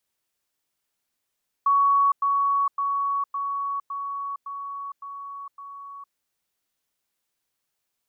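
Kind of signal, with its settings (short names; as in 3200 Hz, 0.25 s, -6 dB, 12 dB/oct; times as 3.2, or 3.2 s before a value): level ladder 1120 Hz -16 dBFS, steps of -3 dB, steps 8, 0.46 s 0.10 s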